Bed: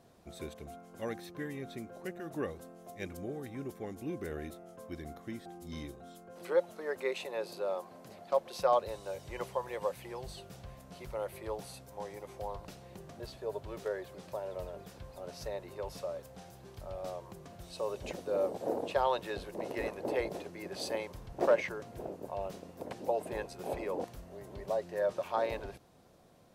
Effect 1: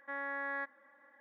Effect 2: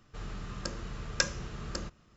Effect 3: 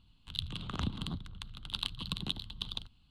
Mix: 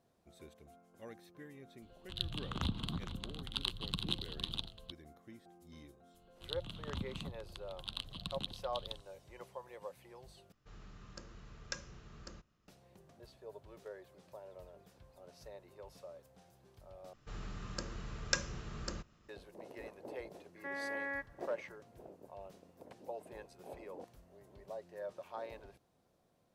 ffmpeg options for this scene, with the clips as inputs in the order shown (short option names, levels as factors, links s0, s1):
-filter_complex "[3:a]asplit=2[s0][s1];[2:a]asplit=2[s2][s3];[0:a]volume=0.237[s4];[s0]aecho=1:1:459:0.335[s5];[s2]aresample=16000,aresample=44100[s6];[1:a]aecho=1:1:6.8:0.63[s7];[s4]asplit=3[s8][s9][s10];[s8]atrim=end=10.524[s11];[s6]atrim=end=2.16,asetpts=PTS-STARTPTS,volume=0.2[s12];[s9]atrim=start=12.676:end=17.134[s13];[s3]atrim=end=2.16,asetpts=PTS-STARTPTS,volume=0.596[s14];[s10]atrim=start=19.286[s15];[s5]atrim=end=3.1,asetpts=PTS-STARTPTS,volume=0.841,afade=t=in:d=0.004:c=hsin,afade=t=out:st=3.096:d=0.004:c=hsin,adelay=1820[s16];[s1]atrim=end=3.1,asetpts=PTS-STARTPTS,volume=0.473,afade=t=in:d=0.004:c=hsin,afade=t=out:st=3.096:d=0.004:c=hsin,adelay=6140[s17];[s7]atrim=end=1.2,asetpts=PTS-STARTPTS,volume=0.841,afade=t=in:d=0.004:c=hsin,afade=t=out:st=1.196:d=0.004:c=hsin,adelay=20560[s18];[s11][s12]acrossfade=d=0.004:c1=hsin:c2=hsin[s19];[s19][s13]acrossfade=d=0.004:c1=hsin:c2=hsin[s20];[s20][s14]acrossfade=d=0.004:c1=hsin:c2=hsin[s21];[s21][s15]acrossfade=d=0.004:c1=hsin:c2=hsin[s22];[s22][s16][s17][s18]amix=inputs=4:normalize=0"